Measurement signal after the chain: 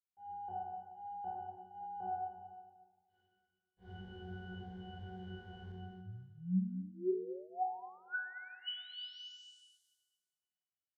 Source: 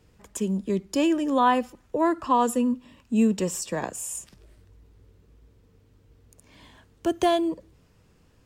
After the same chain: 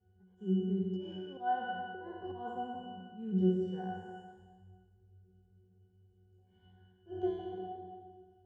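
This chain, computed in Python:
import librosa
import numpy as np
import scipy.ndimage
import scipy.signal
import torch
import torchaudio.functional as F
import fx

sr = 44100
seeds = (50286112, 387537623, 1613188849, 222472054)

y = fx.spec_trails(x, sr, decay_s=1.55)
y = scipy.signal.sosfilt(scipy.signal.butter(2, 6300.0, 'lowpass', fs=sr, output='sos'), y)
y = fx.peak_eq(y, sr, hz=550.0, db=6.0, octaves=0.38)
y = fx.auto_swell(y, sr, attack_ms=140.0)
y = fx.octave_resonator(y, sr, note='F#', decay_s=0.59)
y = fx.echo_feedback(y, sr, ms=221, feedback_pct=21, wet_db=-12.0)
y = y * librosa.db_to_amplitude(4.0)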